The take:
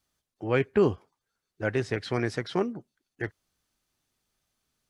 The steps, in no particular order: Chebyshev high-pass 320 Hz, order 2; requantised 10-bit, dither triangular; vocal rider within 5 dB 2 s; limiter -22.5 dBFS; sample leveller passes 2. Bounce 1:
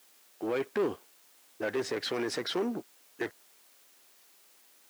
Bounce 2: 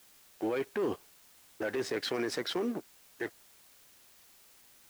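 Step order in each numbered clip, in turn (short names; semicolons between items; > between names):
vocal rider > limiter > sample leveller > requantised > Chebyshev high-pass; sample leveller > Chebyshev high-pass > limiter > vocal rider > requantised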